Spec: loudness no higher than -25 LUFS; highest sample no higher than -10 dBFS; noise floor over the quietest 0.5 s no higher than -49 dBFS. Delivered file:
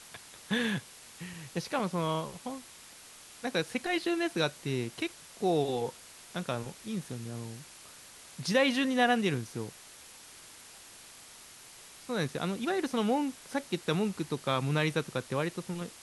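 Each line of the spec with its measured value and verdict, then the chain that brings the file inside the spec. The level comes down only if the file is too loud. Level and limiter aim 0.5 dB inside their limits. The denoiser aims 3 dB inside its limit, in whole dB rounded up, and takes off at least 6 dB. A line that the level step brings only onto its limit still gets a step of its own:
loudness -32.0 LUFS: pass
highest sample -12.5 dBFS: pass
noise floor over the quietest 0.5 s -52 dBFS: pass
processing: none needed

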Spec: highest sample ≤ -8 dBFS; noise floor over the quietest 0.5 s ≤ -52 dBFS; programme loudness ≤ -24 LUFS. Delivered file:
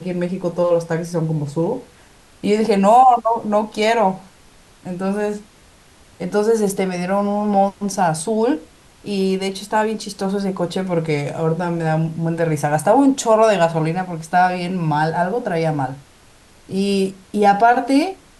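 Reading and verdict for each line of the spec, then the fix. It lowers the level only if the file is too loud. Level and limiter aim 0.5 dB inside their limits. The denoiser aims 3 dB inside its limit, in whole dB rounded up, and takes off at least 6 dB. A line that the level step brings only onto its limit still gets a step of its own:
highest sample -3.5 dBFS: fail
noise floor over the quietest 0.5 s -49 dBFS: fail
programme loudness -18.5 LUFS: fail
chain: trim -6 dB

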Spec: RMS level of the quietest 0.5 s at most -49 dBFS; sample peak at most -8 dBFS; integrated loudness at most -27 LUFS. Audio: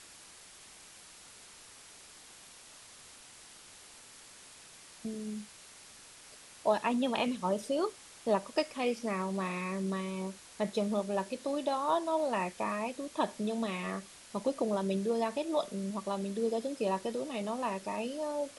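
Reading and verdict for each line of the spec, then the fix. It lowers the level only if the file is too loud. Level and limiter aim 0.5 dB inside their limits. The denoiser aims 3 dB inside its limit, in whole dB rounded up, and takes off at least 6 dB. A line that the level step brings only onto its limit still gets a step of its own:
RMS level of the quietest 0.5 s -54 dBFS: pass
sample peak -16.0 dBFS: pass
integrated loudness -34.0 LUFS: pass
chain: none needed

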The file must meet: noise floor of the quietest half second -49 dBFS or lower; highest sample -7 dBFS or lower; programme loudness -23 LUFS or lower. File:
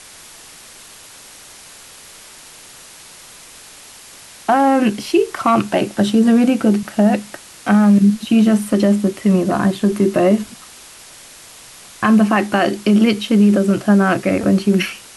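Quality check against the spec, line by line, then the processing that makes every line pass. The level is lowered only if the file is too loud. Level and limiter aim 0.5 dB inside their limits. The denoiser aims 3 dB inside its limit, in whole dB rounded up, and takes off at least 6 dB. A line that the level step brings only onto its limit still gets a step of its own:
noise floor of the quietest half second -40 dBFS: fail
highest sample -5.0 dBFS: fail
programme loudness -15.0 LUFS: fail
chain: noise reduction 6 dB, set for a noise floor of -40 dBFS; trim -8.5 dB

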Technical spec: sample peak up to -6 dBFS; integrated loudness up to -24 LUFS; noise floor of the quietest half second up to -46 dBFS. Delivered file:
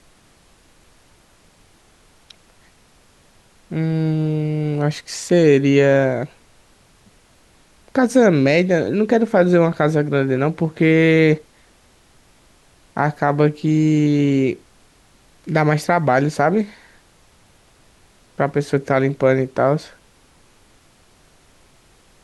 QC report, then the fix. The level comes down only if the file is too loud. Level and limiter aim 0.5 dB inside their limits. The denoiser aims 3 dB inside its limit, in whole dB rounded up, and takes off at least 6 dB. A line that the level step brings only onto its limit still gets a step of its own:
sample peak -3.5 dBFS: fail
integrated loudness -17.5 LUFS: fail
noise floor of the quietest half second -53 dBFS: pass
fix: trim -7 dB

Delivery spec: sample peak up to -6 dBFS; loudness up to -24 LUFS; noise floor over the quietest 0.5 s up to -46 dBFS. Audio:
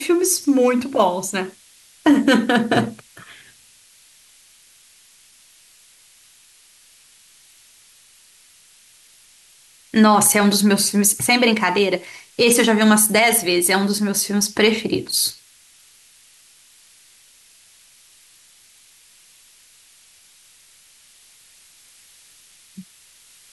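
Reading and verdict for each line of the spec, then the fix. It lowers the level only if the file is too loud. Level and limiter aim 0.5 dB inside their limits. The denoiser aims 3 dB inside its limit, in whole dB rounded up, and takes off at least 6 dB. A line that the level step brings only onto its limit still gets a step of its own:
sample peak -5.0 dBFS: fail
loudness -16.5 LUFS: fail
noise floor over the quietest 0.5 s -52 dBFS: pass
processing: trim -8 dB

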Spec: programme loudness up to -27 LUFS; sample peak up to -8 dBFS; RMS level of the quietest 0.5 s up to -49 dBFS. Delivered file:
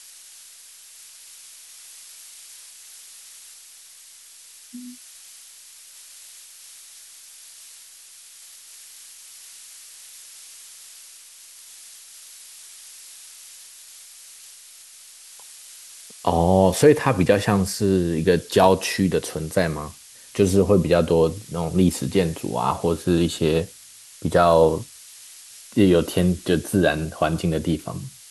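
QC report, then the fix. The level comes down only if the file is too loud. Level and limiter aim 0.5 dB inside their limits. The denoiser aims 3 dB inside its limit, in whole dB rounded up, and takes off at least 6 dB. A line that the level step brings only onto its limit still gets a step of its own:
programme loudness -20.5 LUFS: fail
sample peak -2.5 dBFS: fail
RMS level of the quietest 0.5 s -47 dBFS: fail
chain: trim -7 dB

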